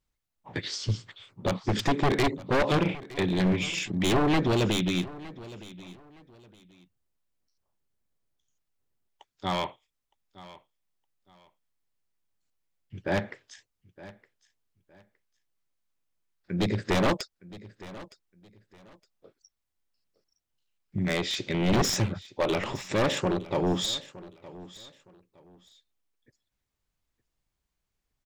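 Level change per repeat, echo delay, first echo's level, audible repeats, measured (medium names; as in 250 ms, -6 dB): -11.5 dB, 914 ms, -18.5 dB, 2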